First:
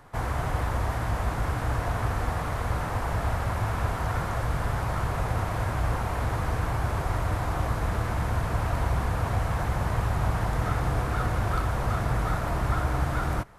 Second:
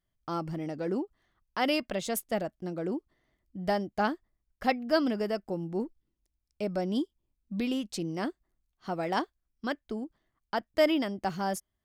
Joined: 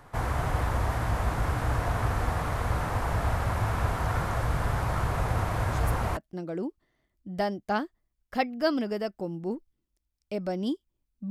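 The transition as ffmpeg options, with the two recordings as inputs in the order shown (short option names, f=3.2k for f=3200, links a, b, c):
-filter_complex "[1:a]asplit=2[a][b];[0:a]apad=whole_dur=11.3,atrim=end=11.3,atrim=end=6.172[c];[b]atrim=start=2.458:end=7.59[d];[a]atrim=start=1.99:end=2.46,asetpts=PTS-STARTPTS,volume=-10dB,afade=t=in:d=0.004:c=hsin,afade=t=out:st=0.466:d=0.004:c=hsin,adelay=5700[e];[c][d]acrossfade=d=0.004:c1=hsin:c2=hsin[f];[f][e]amix=inputs=2:normalize=0"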